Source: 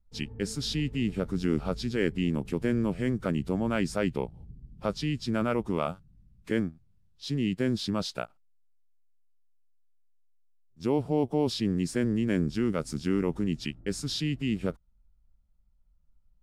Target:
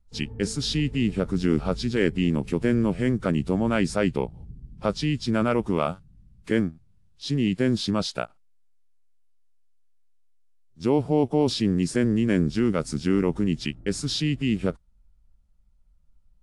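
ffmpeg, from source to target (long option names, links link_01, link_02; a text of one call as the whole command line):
ffmpeg -i in.wav -af "volume=5dB" -ar 24000 -c:a aac -b:a 64k out.aac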